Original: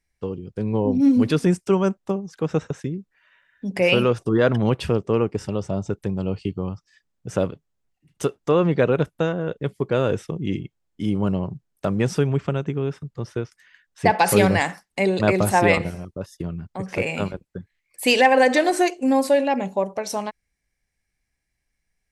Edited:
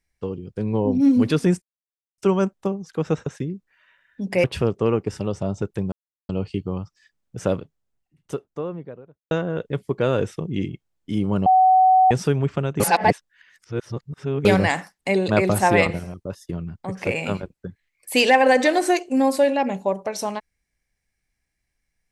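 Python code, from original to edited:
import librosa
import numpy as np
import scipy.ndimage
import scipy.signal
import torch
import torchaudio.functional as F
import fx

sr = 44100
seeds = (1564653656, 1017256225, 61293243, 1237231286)

y = fx.studio_fade_out(x, sr, start_s=7.38, length_s=1.84)
y = fx.edit(y, sr, fx.insert_silence(at_s=1.62, length_s=0.56),
    fx.cut(start_s=3.88, length_s=0.84),
    fx.insert_silence(at_s=6.2, length_s=0.37),
    fx.bleep(start_s=11.37, length_s=0.65, hz=750.0, db=-11.0),
    fx.reverse_span(start_s=12.71, length_s=1.65), tone=tone)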